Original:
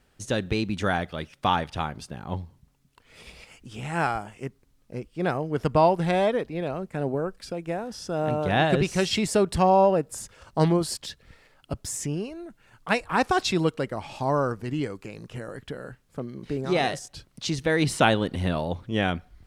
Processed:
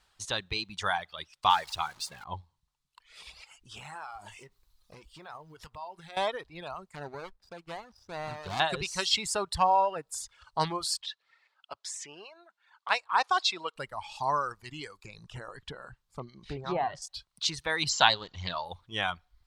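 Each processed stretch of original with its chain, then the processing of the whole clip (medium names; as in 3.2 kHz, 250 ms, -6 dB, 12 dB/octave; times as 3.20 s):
1.50–2.24 s: jump at every zero crossing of -35 dBFS + bass shelf 270 Hz -5.5 dB
3.77–6.17 s: companding laws mixed up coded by mu + compression 20:1, threshold -33 dBFS + doubling 20 ms -12 dB
6.95–8.60 s: median filter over 41 samples + treble shelf 12 kHz -4 dB
11.01–13.76 s: high-pass 410 Hz + distance through air 70 m
15.04–17.02 s: low-pass that closes with the level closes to 1.1 kHz, closed at -19.5 dBFS + bass shelf 450 Hz +8 dB + loudspeaker Doppler distortion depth 0.1 ms
17.89–18.65 s: brick-wall FIR low-pass 7.6 kHz + treble shelf 5.3 kHz +10.5 dB + loudspeaker Doppler distortion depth 0.18 ms
whole clip: graphic EQ 125/250/500/1000/4000/8000 Hz -4/-11/-5/+10/+10/+5 dB; reverb removal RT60 1.7 s; trim -6.5 dB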